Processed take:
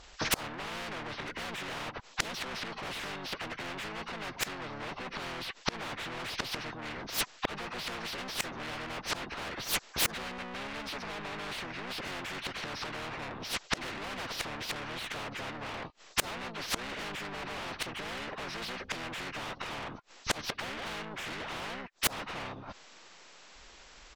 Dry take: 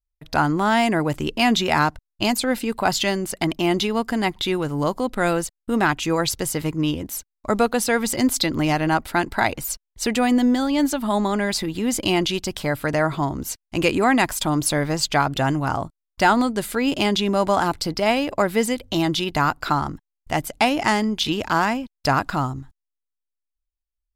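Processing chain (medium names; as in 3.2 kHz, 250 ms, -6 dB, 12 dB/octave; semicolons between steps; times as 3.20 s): knee-point frequency compression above 1 kHz 1.5:1; overdrive pedal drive 34 dB, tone 1 kHz, clips at -5.5 dBFS; harmony voices -5 st -2 dB; inverted gate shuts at -11 dBFS, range -36 dB; spectrum-flattening compressor 4:1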